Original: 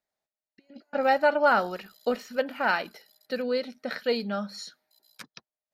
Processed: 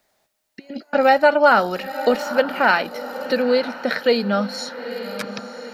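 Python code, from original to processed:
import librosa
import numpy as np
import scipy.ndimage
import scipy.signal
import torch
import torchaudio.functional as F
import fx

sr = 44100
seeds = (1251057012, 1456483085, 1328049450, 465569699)

p1 = x + fx.echo_diffused(x, sr, ms=906, feedback_pct=41, wet_db=-16, dry=0)
p2 = fx.band_squash(p1, sr, depth_pct=40)
y = p2 * 10.0 ** (9.0 / 20.0)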